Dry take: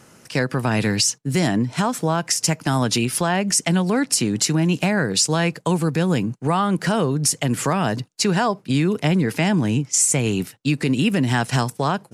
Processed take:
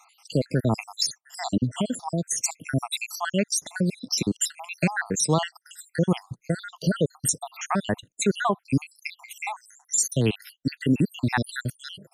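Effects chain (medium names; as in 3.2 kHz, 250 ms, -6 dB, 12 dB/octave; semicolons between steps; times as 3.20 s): random holes in the spectrogram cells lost 75%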